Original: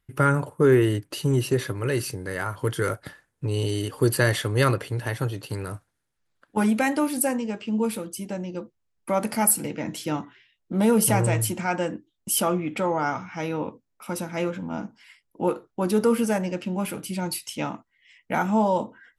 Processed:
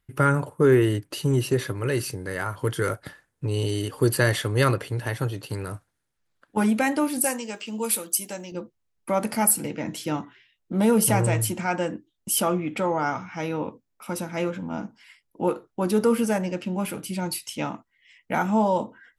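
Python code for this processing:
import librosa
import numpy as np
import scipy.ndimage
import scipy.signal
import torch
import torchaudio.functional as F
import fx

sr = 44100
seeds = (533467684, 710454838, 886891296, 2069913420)

y = fx.riaa(x, sr, side='recording', at=(7.24, 8.52))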